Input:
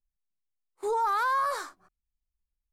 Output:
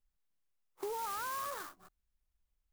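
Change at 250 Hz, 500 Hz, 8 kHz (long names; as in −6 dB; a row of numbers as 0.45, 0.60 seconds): can't be measured, −10.0 dB, 0.0 dB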